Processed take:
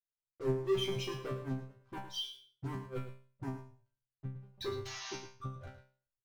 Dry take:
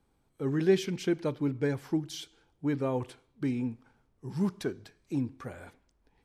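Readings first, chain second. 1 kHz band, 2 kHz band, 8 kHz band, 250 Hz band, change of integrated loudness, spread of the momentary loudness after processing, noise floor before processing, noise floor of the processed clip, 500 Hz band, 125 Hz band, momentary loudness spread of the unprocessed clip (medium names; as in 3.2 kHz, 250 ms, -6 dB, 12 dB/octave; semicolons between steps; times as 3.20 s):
-2.5 dB, -6.5 dB, -3.0 dB, -13.0 dB, -8.0 dB, 15 LU, -72 dBFS, under -85 dBFS, -6.0 dB, -6.0 dB, 17 LU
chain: resonances exaggerated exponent 3; expander -60 dBFS; waveshaping leveller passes 5; resonant low shelf 140 Hz +9 dB, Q 3; in parallel at -6 dB: crossover distortion -30 dBFS; on the sum: painted sound noise, 4.85–5.26 s, 610–6700 Hz -26 dBFS; inverted gate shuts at -8 dBFS, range -31 dB; chord resonator C3 fifth, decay 0.43 s; delay 109 ms -11 dB; trim -4 dB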